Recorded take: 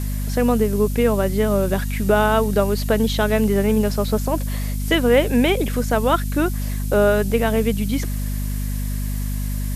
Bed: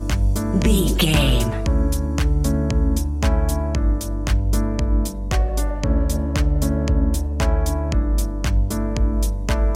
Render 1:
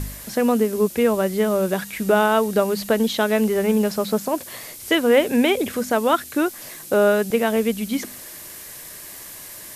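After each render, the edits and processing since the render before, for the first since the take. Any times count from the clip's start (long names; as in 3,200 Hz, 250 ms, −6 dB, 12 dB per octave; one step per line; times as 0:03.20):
hum removal 50 Hz, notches 5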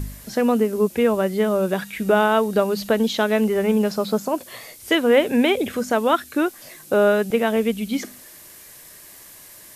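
noise reduction from a noise print 6 dB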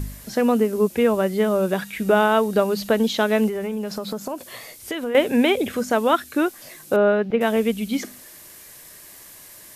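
0:03.48–0:05.15: downward compressor, threshold −24 dBFS
0:06.96–0:07.41: high-frequency loss of the air 310 metres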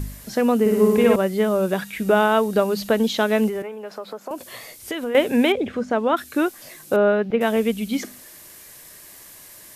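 0:00.60–0:01.16: flutter between parallel walls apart 9.6 metres, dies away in 1.3 s
0:03.62–0:04.31: three-way crossover with the lows and the highs turned down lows −20 dB, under 370 Hz, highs −13 dB, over 2,700 Hz
0:05.52–0:06.17: head-to-tape spacing loss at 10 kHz 21 dB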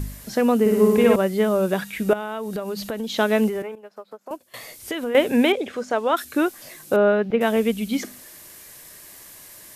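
0:02.13–0:03.18: downward compressor, threshold −25 dBFS
0:03.75–0:04.54: expander for the loud parts 2.5 to 1, over −40 dBFS
0:05.53–0:06.25: bass and treble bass −14 dB, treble +7 dB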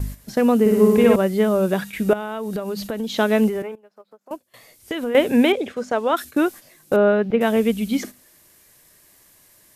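noise gate −34 dBFS, range −10 dB
low-shelf EQ 330 Hz +4 dB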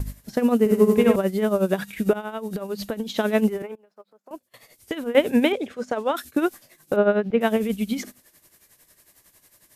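amplitude tremolo 11 Hz, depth 71%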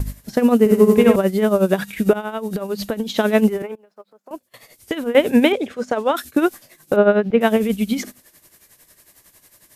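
level +5 dB
brickwall limiter −2 dBFS, peak gain reduction 2.5 dB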